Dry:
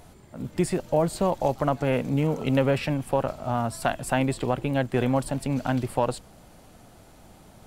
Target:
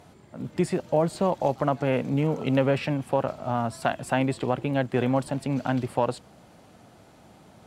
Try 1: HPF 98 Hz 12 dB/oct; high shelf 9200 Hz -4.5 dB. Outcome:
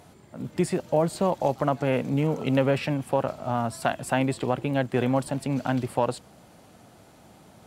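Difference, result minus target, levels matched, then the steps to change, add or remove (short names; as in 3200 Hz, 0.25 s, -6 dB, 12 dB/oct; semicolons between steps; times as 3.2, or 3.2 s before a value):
8000 Hz band +3.5 dB
change: high shelf 9200 Hz -13 dB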